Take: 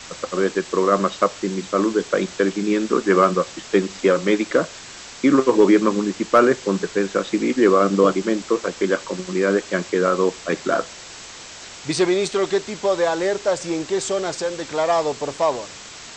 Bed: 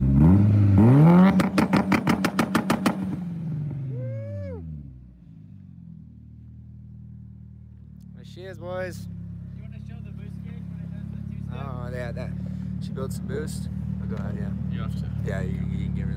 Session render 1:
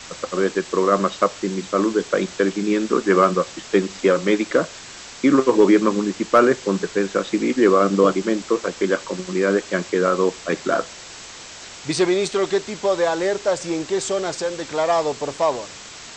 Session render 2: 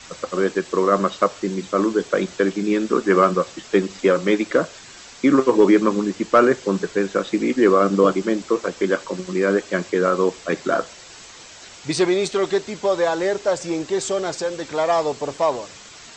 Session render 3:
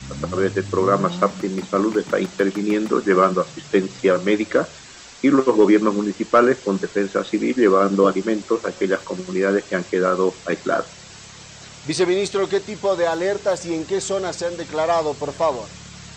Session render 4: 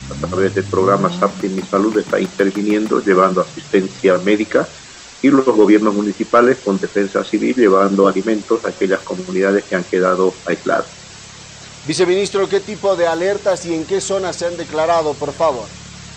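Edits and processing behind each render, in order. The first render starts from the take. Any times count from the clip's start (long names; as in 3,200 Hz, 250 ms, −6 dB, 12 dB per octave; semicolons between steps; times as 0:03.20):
no processing that can be heard
broadband denoise 6 dB, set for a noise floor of −39 dBFS
mix in bed −15 dB
level +4.5 dB; brickwall limiter −1 dBFS, peak gain reduction 2 dB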